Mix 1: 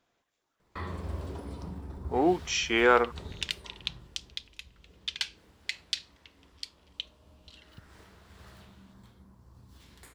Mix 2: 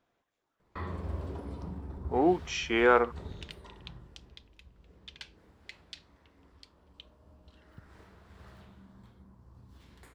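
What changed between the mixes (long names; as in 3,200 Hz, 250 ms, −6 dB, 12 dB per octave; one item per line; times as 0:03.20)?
second sound −9.0 dB
master: add high-shelf EQ 3,100 Hz −10 dB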